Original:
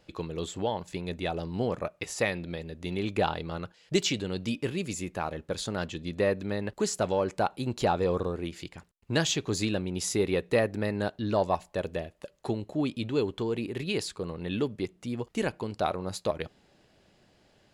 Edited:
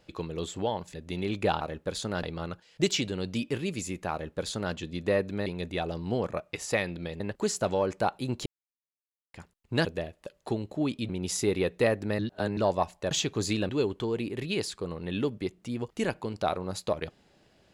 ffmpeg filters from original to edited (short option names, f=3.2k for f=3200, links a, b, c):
-filter_complex "[0:a]asplit=14[a][b][c][d][e][f][g][h][i][j][k][l][m][n];[a]atrim=end=0.942[o];[b]atrim=start=2.678:end=3.352[p];[c]atrim=start=5.238:end=5.862[q];[d]atrim=start=3.348:end=6.582[r];[e]atrim=start=0.938:end=2.682[s];[f]atrim=start=6.578:end=7.84,asetpts=PTS-STARTPTS,afade=t=out:st=1.258:d=0.004:c=hsin[t];[g]atrim=start=7.84:end=8.72,asetpts=PTS-STARTPTS,volume=0[u];[h]atrim=start=8.72:end=9.232,asetpts=PTS-STARTPTS,afade=t=in:d=0.004:c=hsin[v];[i]atrim=start=11.828:end=13.072[w];[j]atrim=start=9.808:end=10.912[x];[k]atrim=start=10.908:end=11.292,asetpts=PTS-STARTPTS,areverse[y];[l]atrim=start=11.288:end=11.832[z];[m]atrim=start=9.228:end=9.812[aa];[n]atrim=start=13.068[ab];[o][p]acrossfade=d=0.004:c1=hsin:c2=hsin[ac];[ac][q]acrossfade=d=0.004:c1=hsin:c2=hsin[ad];[ad][r]acrossfade=d=0.004:c1=hsin:c2=hsin[ae];[ae][s]acrossfade=d=0.004:c1=hsin:c2=hsin[af];[t][u][v]concat=n=3:v=0:a=1[ag];[af][ag]acrossfade=d=0.004:c1=hsin:c2=hsin[ah];[ah][w]acrossfade=d=0.004:c1=hsin:c2=hsin[ai];[ai][x]acrossfade=d=0.004:c1=hsin:c2=hsin[aj];[aj][y]acrossfade=d=0.004:c1=hsin:c2=hsin[ak];[ak][z]acrossfade=d=0.004:c1=hsin:c2=hsin[al];[al][aa]acrossfade=d=0.004:c1=hsin:c2=hsin[am];[am][ab]acrossfade=d=0.004:c1=hsin:c2=hsin"